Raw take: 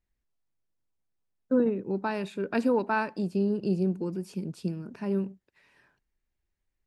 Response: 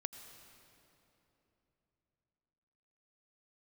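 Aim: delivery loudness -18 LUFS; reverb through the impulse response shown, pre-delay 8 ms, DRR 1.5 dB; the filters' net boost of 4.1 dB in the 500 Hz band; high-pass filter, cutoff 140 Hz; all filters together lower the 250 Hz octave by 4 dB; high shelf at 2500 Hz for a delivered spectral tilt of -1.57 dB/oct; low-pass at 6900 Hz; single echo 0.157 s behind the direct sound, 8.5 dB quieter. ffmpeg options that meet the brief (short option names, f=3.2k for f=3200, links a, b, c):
-filter_complex "[0:a]highpass=140,lowpass=6.9k,equalizer=f=250:t=o:g=-6,equalizer=f=500:t=o:g=6.5,highshelf=f=2.5k:g=5,aecho=1:1:157:0.376,asplit=2[a][b];[1:a]atrim=start_sample=2205,adelay=8[c];[b][c]afir=irnorm=-1:irlink=0,volume=0.5dB[d];[a][d]amix=inputs=2:normalize=0,volume=6.5dB"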